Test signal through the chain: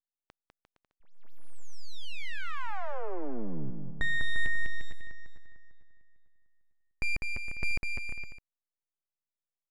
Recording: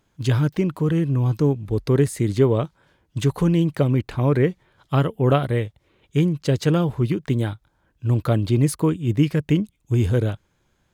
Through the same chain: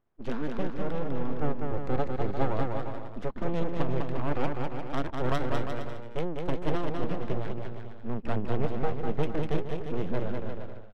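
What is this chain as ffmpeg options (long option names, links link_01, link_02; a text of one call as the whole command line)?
ffmpeg -i in.wav -filter_complex "[0:a]lowpass=frequency=7600:width=0.5412,lowpass=frequency=7600:width=1.3066,aeval=exprs='abs(val(0))':channel_layout=same,adynamicsmooth=sensitivity=2:basefreq=1700,asplit=2[link_01][link_02];[link_02]aecho=0:1:200|350|462.5|546.9|610.2:0.631|0.398|0.251|0.158|0.1[link_03];[link_01][link_03]amix=inputs=2:normalize=0,volume=-8dB" out.wav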